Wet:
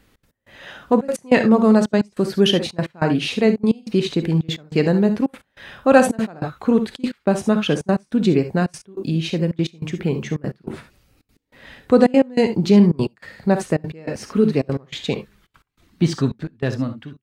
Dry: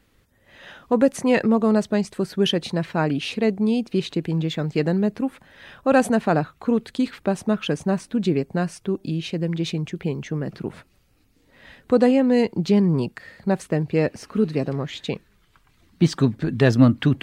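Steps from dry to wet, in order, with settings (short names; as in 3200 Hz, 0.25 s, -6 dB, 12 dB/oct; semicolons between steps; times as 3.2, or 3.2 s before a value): ending faded out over 1.85 s; non-linear reverb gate 90 ms rising, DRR 8.5 dB; step gate "xx.x..xxxxx" 194 bpm -24 dB; gain +4 dB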